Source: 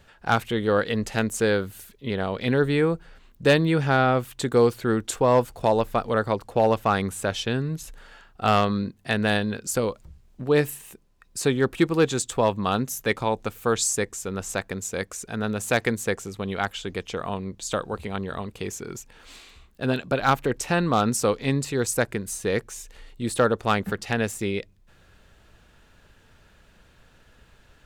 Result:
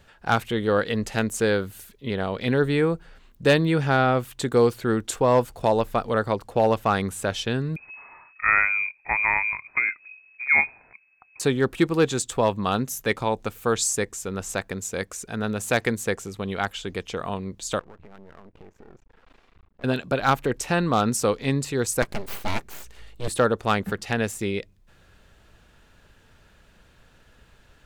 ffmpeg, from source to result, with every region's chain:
-filter_complex "[0:a]asettb=1/sr,asplit=3[a][b][c];[a]atrim=end=7.764[d];[b]atrim=start=7.76:end=11.4,asetpts=PTS-STARTPTS,afade=t=in:d=0.004:c=qsin,afade=t=out:st=3.636:d=0.004:c=qsin,lowpass=f=2.2k:t=q:w=0.5098,lowpass=f=2.2k:t=q:w=0.6013,lowpass=f=2.2k:t=q:w=0.9,lowpass=f=2.2k:t=q:w=2.563,afreqshift=-2600,lowshelf=f=420:g=5.5[e];[c]atrim=start=11.396[f];[d][e]acrossfade=d=0.004:c1=hsin:c2=qsin[g];[g][f]acrossfade=d=0.004:c1=qsin:c2=hsin,asettb=1/sr,asplit=3[h][i][j];[h]atrim=end=17.794[k];[i]atrim=start=17.79:end=19.84,asetpts=PTS-STARTPTS,afade=t=in:d=0.004:c=qsin,afade=t=out:st=2.046:d=0.004:c=qsin,lowpass=1.4k,aeval=exprs='max(val(0),0)':c=same,acompressor=threshold=-43dB:ratio=4:attack=3.2:release=140:knee=1:detection=peak[l];[j]atrim=start=19.836[m];[k][l]acrossfade=d=0.004:c1=hsin:c2=qsin[n];[n][m]acrossfade=d=0.004:c1=qsin:c2=hsin,asettb=1/sr,asplit=3[o][p][q];[o]atrim=end=22.024[r];[p]atrim=start=22.02:end=23.28,asetpts=PTS-STARTPTS,afade=t=in:d=0.004:c=qsin,afade=t=out:st=1.256:d=0.004:c=qsin,aecho=1:1:5:0.47,atrim=end_sample=55566,aeval=exprs='abs(val(0))':c=same[s];[q]atrim=start=23.276[t];[r][s]acrossfade=d=0.004:c1=hsin:c2=qsin[u];[u][t]acrossfade=d=0.004:c1=qsin:c2=hsin"

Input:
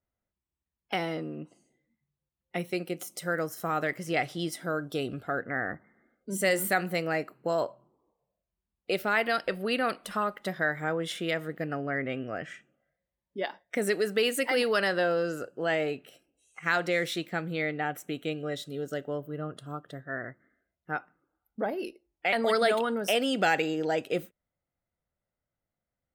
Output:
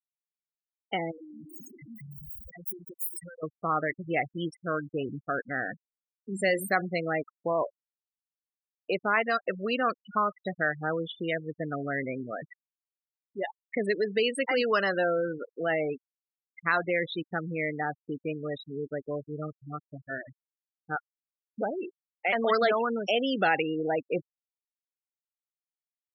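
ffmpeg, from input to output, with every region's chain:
-filter_complex "[0:a]asettb=1/sr,asplit=3[a][b][c];[a]atrim=end=1.114[d];[b]atrim=start=1.11:end=3.43,asetpts=PTS-STARTPTS,afade=t=in:d=0.004:c=qsin,afade=t=out:st=2.316:d=0.004:c=qsin,aeval=exprs='val(0)+0.5*0.0168*sgn(val(0))':c=same,acompressor=threshold=-39dB:ratio=8:attack=3.2:release=140:knee=1:detection=peak,aemphasis=mode=production:type=50fm[e];[c]atrim=start=3.426[f];[d][e]acrossfade=d=0.004:c1=hsin:c2=qsin[g];[g][f]acrossfade=d=0.004:c1=qsin:c2=hsin,afftfilt=real='re*gte(hypot(re,im),0.0501)':imag='im*gte(hypot(re,im),0.0501)':win_size=1024:overlap=0.75,equalizer=f=1.1k:t=o:w=0.21:g=10"

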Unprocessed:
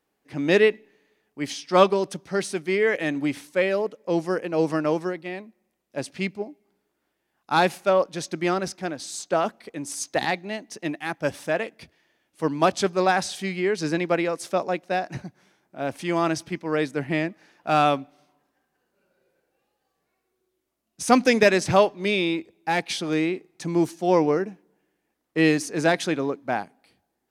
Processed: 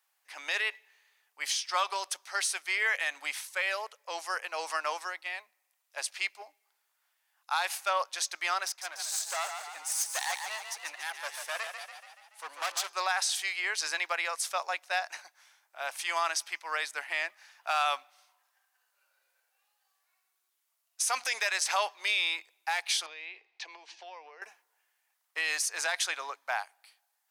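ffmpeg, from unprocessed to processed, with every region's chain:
-filter_complex "[0:a]asettb=1/sr,asplit=3[a][b][c];[a]atrim=end=8.674[d];[b]atrim=start=8.67:end=12.87,asetpts=PTS-STARTPTS,afade=t=in:d=0.004:c=qsin,afade=t=out:st=4.196:d=0.004:c=qsin,aeval=exprs='(tanh(17.8*val(0)+0.7)-tanh(0.7))/17.8':c=same,asplit=8[e][f][g][h][i][j][k][l];[f]adelay=143,afreqshift=35,volume=-7dB[m];[g]adelay=286,afreqshift=70,volume=-12.2dB[n];[h]adelay=429,afreqshift=105,volume=-17.4dB[o];[i]adelay=572,afreqshift=140,volume=-22.6dB[p];[j]adelay=715,afreqshift=175,volume=-27.8dB[q];[k]adelay=858,afreqshift=210,volume=-33dB[r];[l]adelay=1001,afreqshift=245,volume=-38.2dB[s];[e][m][n][o][p][q][r][s]amix=inputs=8:normalize=0,atrim=end_sample=185220[t];[c]atrim=start=12.866[u];[d][t]acrossfade=d=0.004:c1=hsin:c2=qsin[v];[v][u]acrossfade=d=0.004:c1=qsin:c2=hsin,asettb=1/sr,asplit=3[w][x][y];[w]atrim=end=23.064[z];[x]atrim=start=23.06:end=24.42,asetpts=PTS-STARTPTS,afade=t=in:d=0.004:c=qsin,afade=t=out:st=1.356:d=0.004:c=qsin,highpass=f=230:w=0.5412,highpass=f=230:w=1.3066,equalizer=f=450:t=q:w=4:g=6,equalizer=f=1.3k:t=q:w=4:g=-10,equalizer=f=2.6k:t=q:w=4:g=4,lowpass=f=4.4k:w=0.5412,lowpass=f=4.4k:w=1.3066,acompressor=threshold=-31dB:ratio=16:attack=3.2:release=140:knee=1:detection=peak[aa];[y]atrim=start=24.416[ab];[z][aa]acrossfade=d=0.004:c1=hsin:c2=qsin[ac];[ac][ab]acrossfade=d=0.004:c1=qsin:c2=hsin,highpass=f=860:w=0.5412,highpass=f=860:w=1.3066,highshelf=f=4.6k:g=7.5,alimiter=limit=-18.5dB:level=0:latency=1:release=82"

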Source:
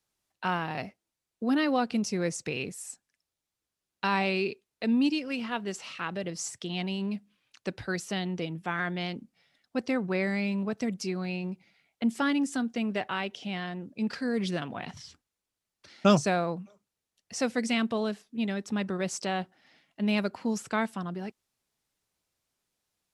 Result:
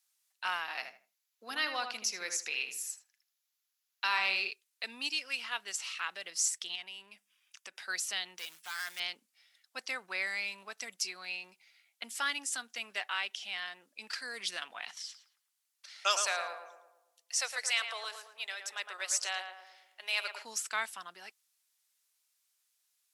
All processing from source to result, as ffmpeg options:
-filter_complex "[0:a]asettb=1/sr,asplit=3[a][b][c];[a]atrim=end=0.614[d];[b]atrim=start=0.61:end=4.51,asetpts=PTS-STARTPTS,afade=t=in:d=0.004:c=qsin,afade=t=out:st=3.896:d=0.004:c=qsin,equalizer=f=8.7k:w=5.1:g=-14,asplit=2[e][f];[f]adelay=78,lowpass=f=2.1k:p=1,volume=-6dB,asplit=2[g][h];[h]adelay=78,lowpass=f=2.1k:p=1,volume=0.26,asplit=2[i][j];[j]adelay=78,lowpass=f=2.1k:p=1,volume=0.26[k];[e][g][i][k]amix=inputs=4:normalize=0,atrim=end_sample=171990[l];[c]atrim=start=4.506[m];[d][l]acrossfade=d=0.004:c1=hsin:c2=qsin[n];[n][m]acrossfade=d=0.004:c1=qsin:c2=hsin,asettb=1/sr,asplit=3[o][p][q];[o]atrim=end=6.754[r];[p]atrim=start=6.75:end=7.8,asetpts=PTS-STARTPTS,afade=t=in:d=0.004:c=qsin,afade=t=out:st=1.046:d=0.004:c=qsin,bandreject=f=4.2k:w=5.1,acompressor=threshold=-37dB:ratio=2.5:attack=3.2:release=140:knee=1:detection=peak[s];[q]atrim=start=7.796[t];[r][s]acrossfade=d=0.004:c1=hsin:c2=qsin[u];[u][t]acrossfade=d=0.004:c1=qsin:c2=hsin,asettb=1/sr,asplit=3[v][w][x];[v]atrim=end=8.384[y];[w]atrim=start=8.38:end=9,asetpts=PTS-STARTPTS,afade=t=in:d=0.004:c=qsin,afade=t=out:st=0.616:d=0.004:c=qsin,equalizer=f=300:w=0.41:g=-6.5,acrusher=bits=4:mode=log:mix=0:aa=0.000001,volume=32.5dB,asoftclip=hard,volume=-32.5dB[z];[x]atrim=start=8.996[aa];[y][z]acrossfade=d=0.004:c1=hsin:c2=qsin[ab];[ab][aa]acrossfade=d=0.004:c1=qsin:c2=hsin,asettb=1/sr,asplit=3[ac][ad][ae];[ac]atrim=end=14.984[af];[ad]atrim=start=14.98:end=20.45,asetpts=PTS-STARTPTS,afade=t=in:d=0.004:c=qsin,afade=t=out:st=5.466:d=0.004:c=qsin,highpass=f=440:w=0.5412,highpass=f=440:w=1.3066,asplit=2[ag][ah];[ah]adelay=112,lowpass=f=1.6k:p=1,volume=-5dB,asplit=2[ai][aj];[aj]adelay=112,lowpass=f=1.6k:p=1,volume=0.53,asplit=2[ak][al];[al]adelay=112,lowpass=f=1.6k:p=1,volume=0.53,asplit=2[am][an];[an]adelay=112,lowpass=f=1.6k:p=1,volume=0.53,asplit=2[ao][ap];[ap]adelay=112,lowpass=f=1.6k:p=1,volume=0.53,asplit=2[aq][ar];[ar]adelay=112,lowpass=f=1.6k:p=1,volume=0.53,asplit=2[as][at];[at]adelay=112,lowpass=f=1.6k:p=1,volume=0.53[au];[ag][ai][ak][am][ao][aq][as][au]amix=inputs=8:normalize=0,atrim=end_sample=241227[av];[ae]atrim=start=20.446[aw];[af][av]acrossfade=d=0.004:c1=hsin:c2=qsin[ax];[ax][aw]acrossfade=d=0.004:c1=qsin:c2=hsin,highpass=1.3k,aemphasis=mode=production:type=cd"

